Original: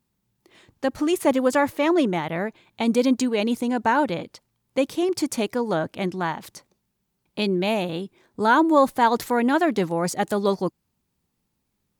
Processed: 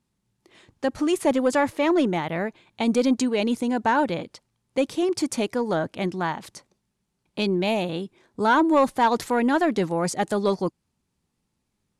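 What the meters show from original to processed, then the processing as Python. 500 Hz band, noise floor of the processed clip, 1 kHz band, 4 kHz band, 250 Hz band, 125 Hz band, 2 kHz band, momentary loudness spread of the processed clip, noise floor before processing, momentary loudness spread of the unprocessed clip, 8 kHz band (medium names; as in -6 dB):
-1.0 dB, -77 dBFS, -1.0 dB, -1.0 dB, -0.5 dB, -0.5 dB, -1.0 dB, 9 LU, -76 dBFS, 10 LU, -0.5 dB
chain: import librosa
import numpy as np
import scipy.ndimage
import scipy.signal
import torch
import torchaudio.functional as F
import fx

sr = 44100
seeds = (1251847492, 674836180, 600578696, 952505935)

y = scipy.signal.sosfilt(scipy.signal.butter(4, 11000.0, 'lowpass', fs=sr, output='sos'), x)
y = 10.0 ** (-10.0 / 20.0) * np.tanh(y / 10.0 ** (-10.0 / 20.0))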